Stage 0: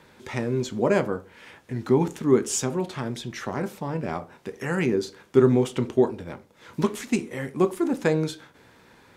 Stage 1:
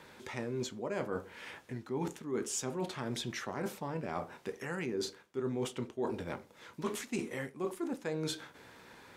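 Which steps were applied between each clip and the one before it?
low-shelf EQ 280 Hz −5.5 dB
reversed playback
downward compressor 8 to 1, threshold −33 dBFS, peak gain reduction 19 dB
reversed playback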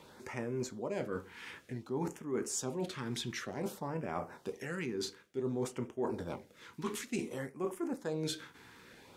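auto-filter notch sine 0.55 Hz 570–4,200 Hz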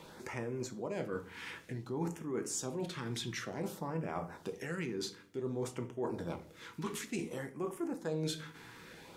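in parallel at +2 dB: downward compressor, threshold −45 dBFS, peak gain reduction 14 dB
on the sum: convolution reverb RT60 0.50 s, pre-delay 6 ms, DRR 10 dB
level −4 dB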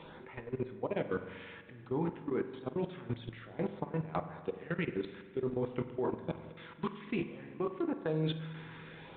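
output level in coarse steps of 19 dB
spring reverb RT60 1.8 s, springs 44 ms, chirp 45 ms, DRR 10 dB
level +6 dB
G.726 40 kbit/s 8,000 Hz

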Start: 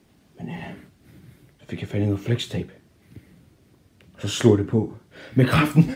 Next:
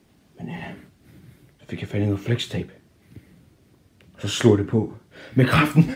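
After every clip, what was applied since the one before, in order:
dynamic equaliser 1,800 Hz, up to +3 dB, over −40 dBFS, Q 0.7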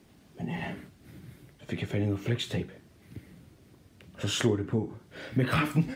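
downward compressor 2 to 1, threshold −30 dBFS, peak gain reduction 11.5 dB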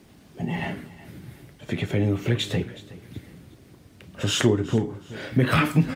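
repeating echo 369 ms, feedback 33%, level −18.5 dB
level +6 dB

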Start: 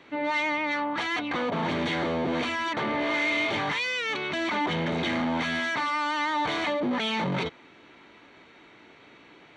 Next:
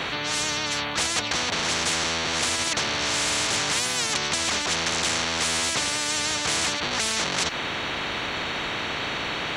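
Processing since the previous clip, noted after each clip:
every bin compressed towards the loudest bin 10 to 1
level +7 dB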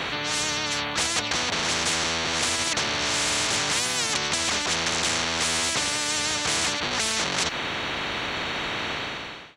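fade-out on the ending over 0.65 s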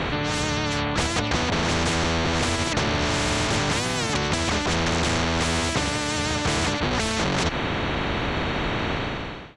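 spectral tilt −3 dB per octave
level +3 dB

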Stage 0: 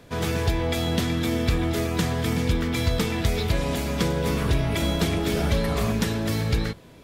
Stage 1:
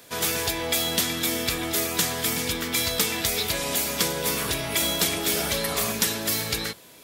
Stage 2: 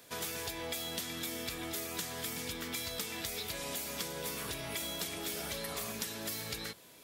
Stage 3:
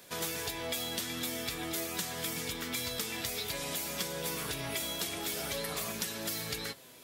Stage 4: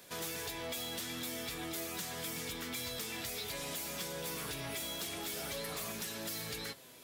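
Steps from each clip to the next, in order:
RIAA equalisation recording
downward compressor 3 to 1, threshold −30 dBFS, peak gain reduction 9.5 dB; level −7.5 dB
flanger 0.49 Hz, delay 5.2 ms, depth 3.6 ms, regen +58%; level +7 dB
soft clipping −33 dBFS, distortion −13 dB; level −1.5 dB

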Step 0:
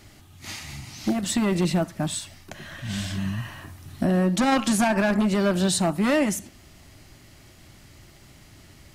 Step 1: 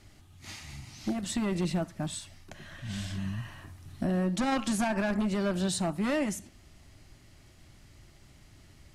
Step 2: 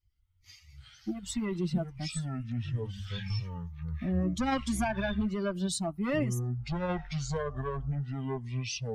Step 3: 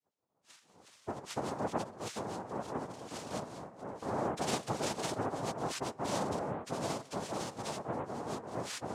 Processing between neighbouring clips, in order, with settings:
low-pass filter 12,000 Hz 12 dB per octave; low-shelf EQ 73 Hz +8 dB; level −8 dB
spectral dynamics exaggerated over time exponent 2; delay with pitch and tempo change per echo 117 ms, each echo −7 semitones, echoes 2; level +1.5 dB
cochlear-implant simulation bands 2; on a send at −22.5 dB: convolution reverb RT60 0.60 s, pre-delay 117 ms; on the sum: level −5 dB

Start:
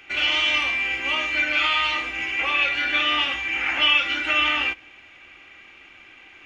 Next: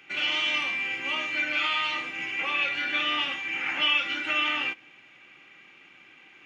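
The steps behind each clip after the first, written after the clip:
low shelf with overshoot 100 Hz −13 dB, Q 3
notch filter 670 Hz, Q 13
level −5.5 dB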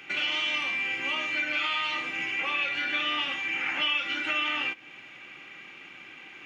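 downward compressor 2 to 1, threshold −39 dBFS, peak gain reduction 10.5 dB
level +6.5 dB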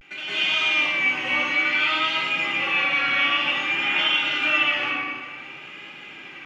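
convolution reverb RT60 1.9 s, pre-delay 162 ms, DRR −11 dB
pitch vibrato 0.55 Hz 71 cents
level −4.5 dB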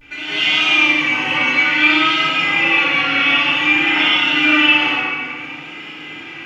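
feedback delay network reverb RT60 0.92 s, low-frequency decay 1.5×, high-frequency decay 0.85×, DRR −7 dB

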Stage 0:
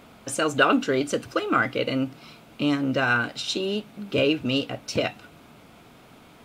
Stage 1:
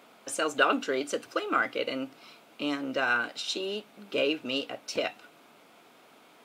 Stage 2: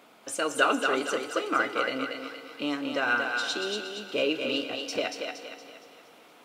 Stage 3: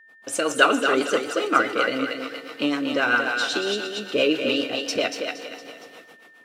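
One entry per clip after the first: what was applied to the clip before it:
high-pass filter 340 Hz 12 dB per octave; level −4 dB
feedback echo with a high-pass in the loop 233 ms, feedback 45%, high-pass 400 Hz, level −4 dB; feedback delay network reverb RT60 3.4 s, high-frequency decay 0.8×, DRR 12 dB
rotating-speaker cabinet horn 7.5 Hz; noise gate −55 dBFS, range −30 dB; steady tone 1,800 Hz −58 dBFS; level +8.5 dB

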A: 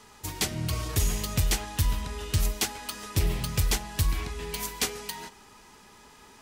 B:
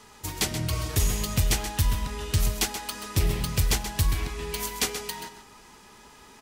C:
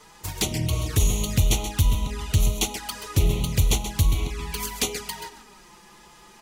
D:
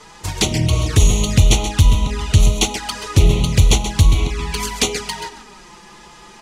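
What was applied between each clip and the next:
single-tap delay 130 ms −10 dB; level +1.5 dB
flanger swept by the level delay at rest 7.3 ms, full sweep at −24.5 dBFS; level +4 dB
low-pass filter 8,100 Hz 12 dB per octave; level +8.5 dB

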